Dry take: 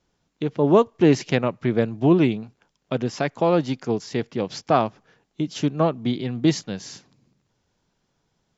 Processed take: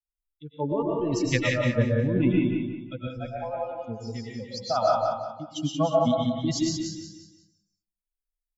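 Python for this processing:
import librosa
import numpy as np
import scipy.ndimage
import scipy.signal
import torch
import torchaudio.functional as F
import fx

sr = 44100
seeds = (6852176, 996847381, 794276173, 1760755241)

y = fx.bin_expand(x, sr, power=3.0)
y = fx.low_shelf(y, sr, hz=77.0, db=10.0)
y = fx.over_compress(y, sr, threshold_db=-24.0, ratio=-1.0)
y = fx.vowel_filter(y, sr, vowel='a', at=(3.07, 3.77))
y = fx.echo_feedback(y, sr, ms=180, feedback_pct=35, wet_db=-5)
y = fx.rev_freeverb(y, sr, rt60_s=0.59, hf_ratio=0.45, predelay_ms=80, drr_db=-2.0)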